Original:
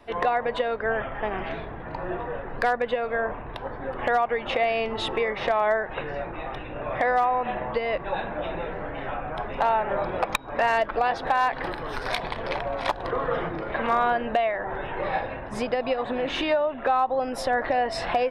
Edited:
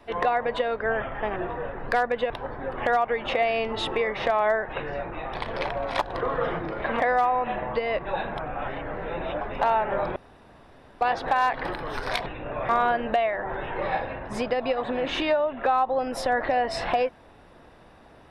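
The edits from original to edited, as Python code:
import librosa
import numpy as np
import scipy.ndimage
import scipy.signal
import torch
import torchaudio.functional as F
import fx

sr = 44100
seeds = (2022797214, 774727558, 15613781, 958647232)

y = fx.edit(x, sr, fx.cut(start_s=1.36, length_s=0.7),
    fx.cut(start_s=3.0, length_s=0.51),
    fx.swap(start_s=6.56, length_s=0.43, other_s=12.25, other_length_s=1.65),
    fx.reverse_span(start_s=8.35, length_s=1.05),
    fx.room_tone_fill(start_s=10.15, length_s=0.85), tone=tone)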